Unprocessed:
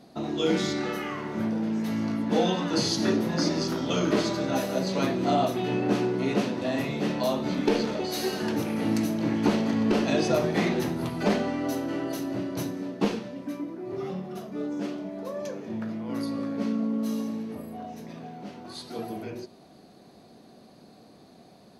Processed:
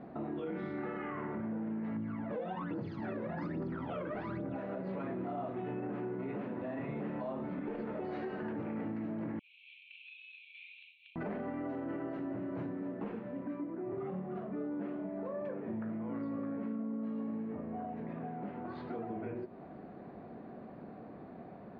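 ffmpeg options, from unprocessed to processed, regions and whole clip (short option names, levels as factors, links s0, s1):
-filter_complex "[0:a]asettb=1/sr,asplit=3[s0][s1][s2];[s0]atrim=end=1.964[s3];[s1]atrim=start=1.96:end=4.56,asetpts=PTS-STARTPTS,afade=t=in:d=0.004:c=qsin,afade=t=out:st=2.596:d=0.004:c=qsin,aphaser=in_gain=1:out_gain=1:delay=2:decay=0.72:speed=1.2:type=triangular,acrusher=bits=6:mode=log:mix=0:aa=0.000001[s4];[s2]atrim=start=4.556[s5];[s3][s4]acrossfade=d=0.004:c1=hsin:c2=qsin[s6];[s6][s5]acrossfade=d=0.004:c1=qsin:c2=hsin,asettb=1/sr,asplit=3[s7][s8][s9];[s7]atrim=end=9.394[s10];[s8]atrim=start=9.39:end=11.16,asetpts=PTS-STARTPTS,afade=t=in:d=0.004:c=qsin,afade=t=out:st=1.766:d=0.004:c=qsin,asuperpass=centerf=3100:order=20:qfactor=1.7,acompressor=threshold=0.00794:ratio=6:attack=3.2:release=140:knee=1:detection=peak[s11];[s9]atrim=start=11.156[s12];[s10][s11]acrossfade=d=0.004:c1=hsin:c2=qsin[s13];[s13][s12]acrossfade=d=0.004:c1=qsin:c2=hsin,lowpass=f=2000:w=0.5412,lowpass=f=2000:w=1.3066,acompressor=threshold=0.00708:ratio=3,alimiter=level_in=3.55:limit=0.0631:level=0:latency=1:release=27,volume=0.282,volume=1.58"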